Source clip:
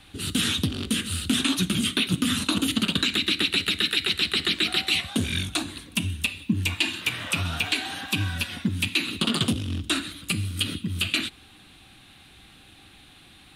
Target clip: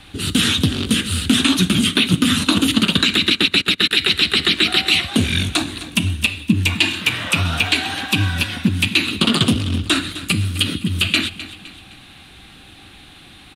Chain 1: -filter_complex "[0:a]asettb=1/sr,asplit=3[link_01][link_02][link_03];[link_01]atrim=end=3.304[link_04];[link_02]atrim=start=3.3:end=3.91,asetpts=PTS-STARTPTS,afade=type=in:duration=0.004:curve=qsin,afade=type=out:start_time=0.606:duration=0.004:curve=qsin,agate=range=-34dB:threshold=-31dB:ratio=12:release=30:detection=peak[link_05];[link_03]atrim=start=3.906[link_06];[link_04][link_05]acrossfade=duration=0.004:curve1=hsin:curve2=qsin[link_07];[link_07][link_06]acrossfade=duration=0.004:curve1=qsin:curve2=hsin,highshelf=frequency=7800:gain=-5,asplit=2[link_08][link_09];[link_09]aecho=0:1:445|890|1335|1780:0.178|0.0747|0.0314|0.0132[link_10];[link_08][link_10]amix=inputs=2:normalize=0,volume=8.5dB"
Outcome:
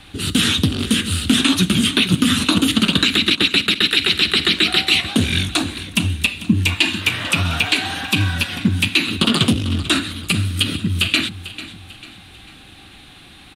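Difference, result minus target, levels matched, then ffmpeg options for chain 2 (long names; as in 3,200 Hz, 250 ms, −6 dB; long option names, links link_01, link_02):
echo 188 ms late
-filter_complex "[0:a]asettb=1/sr,asplit=3[link_01][link_02][link_03];[link_01]atrim=end=3.304[link_04];[link_02]atrim=start=3.3:end=3.91,asetpts=PTS-STARTPTS,afade=type=in:duration=0.004:curve=qsin,afade=type=out:start_time=0.606:duration=0.004:curve=qsin,agate=range=-34dB:threshold=-31dB:ratio=12:release=30:detection=peak[link_05];[link_03]atrim=start=3.906[link_06];[link_04][link_05]acrossfade=duration=0.004:curve1=hsin:curve2=qsin[link_07];[link_07][link_06]acrossfade=duration=0.004:curve1=qsin:curve2=hsin,highshelf=frequency=7800:gain=-5,asplit=2[link_08][link_09];[link_09]aecho=0:1:257|514|771|1028:0.178|0.0747|0.0314|0.0132[link_10];[link_08][link_10]amix=inputs=2:normalize=0,volume=8.5dB"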